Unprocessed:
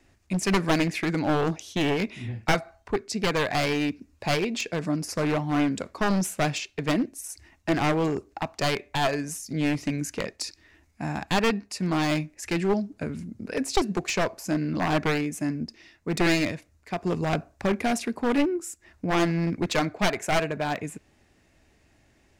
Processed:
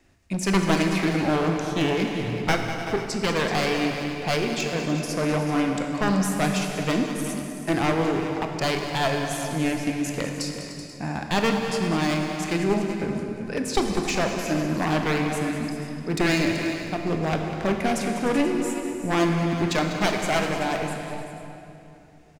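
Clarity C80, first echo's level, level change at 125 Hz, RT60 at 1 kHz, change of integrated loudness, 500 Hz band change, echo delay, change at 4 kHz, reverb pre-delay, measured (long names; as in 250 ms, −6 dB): 3.0 dB, −12.0 dB, +2.5 dB, 2.8 s, +2.0 dB, +2.5 dB, 198 ms, +2.0 dB, 21 ms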